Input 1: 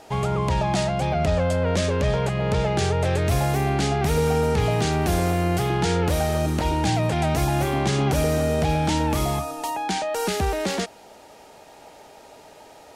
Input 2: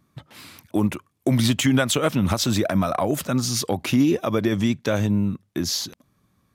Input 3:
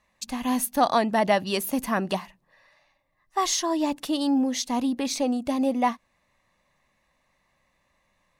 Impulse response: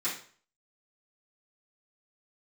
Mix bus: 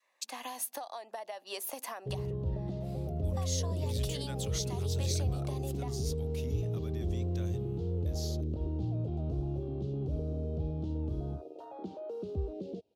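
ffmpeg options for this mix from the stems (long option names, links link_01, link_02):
-filter_complex "[0:a]highpass=75,afwtdn=0.0708,firequalizer=gain_entry='entry(100,0);entry(150,-4);entry(390,4);entry(860,-17);entry(1800,-26);entry(2700,-10);entry(3800,-10);entry(7900,-26)':delay=0.05:min_phase=1,adelay=1950,volume=-4dB[link_01];[1:a]adelay=2500,volume=-17.5dB[link_02];[2:a]highpass=frequency=390:width=0.5412,highpass=frequency=390:width=1.3066,adynamicequalizer=threshold=0.0158:dfrequency=740:dqfactor=1.4:tfrequency=740:tqfactor=1.4:attack=5:release=100:ratio=0.375:range=4:mode=boostabove:tftype=bell,acompressor=threshold=-27dB:ratio=6,volume=-4dB[link_03];[link_01][link_02][link_03]amix=inputs=3:normalize=0,acrossover=split=130|3000[link_04][link_05][link_06];[link_05]acompressor=threshold=-39dB:ratio=6[link_07];[link_04][link_07][link_06]amix=inputs=3:normalize=0"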